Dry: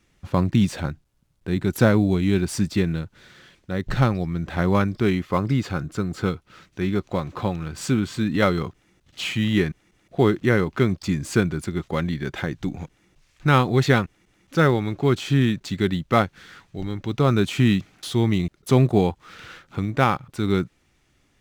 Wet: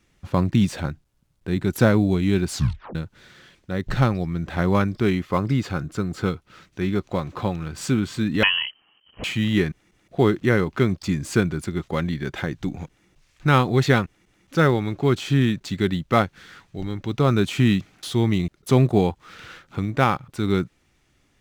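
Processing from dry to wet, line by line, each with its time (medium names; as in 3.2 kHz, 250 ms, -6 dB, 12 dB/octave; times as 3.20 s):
2.49 s: tape stop 0.46 s
8.43–9.24 s: frequency inversion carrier 3.1 kHz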